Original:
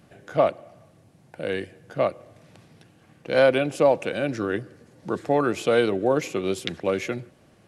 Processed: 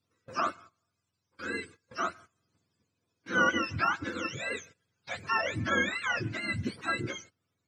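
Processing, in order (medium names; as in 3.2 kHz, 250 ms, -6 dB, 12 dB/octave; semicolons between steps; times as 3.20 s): spectrum inverted on a logarithmic axis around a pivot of 880 Hz; gate -45 dBFS, range -18 dB; trim -5 dB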